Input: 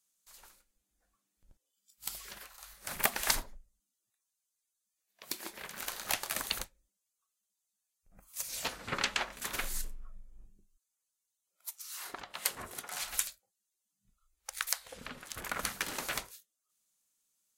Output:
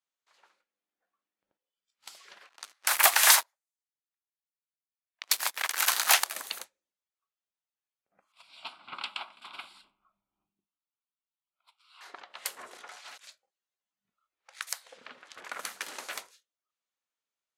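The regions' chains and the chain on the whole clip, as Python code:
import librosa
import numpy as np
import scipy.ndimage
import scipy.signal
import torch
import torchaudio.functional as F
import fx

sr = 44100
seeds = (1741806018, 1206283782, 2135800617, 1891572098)

y = fx.chain(x, sr, fx.highpass(hz=740.0, slope=24),
    fx.leveller(passes=5), at=(2.49, 6.24))
y = fx.chain(y, sr, fx.lowpass(hz=8100.0, slope=12),
    fx.fixed_phaser(hz=1800.0, stages=6), at=(8.32, 12.01))
y = fx.chain(y, sr, fx.over_compress(threshold_db=-44.0, ratio=-1.0),
    fx.clip_hard(threshold_db=-35.0), at=(12.59, 14.6))
y = scipy.signal.sosfilt(scipy.signal.butter(2, 410.0, 'highpass', fs=sr, output='sos'), y)
y = fx.env_lowpass(y, sr, base_hz=2700.0, full_db=-32.0)
y = F.gain(torch.from_numpy(y), -2.0).numpy()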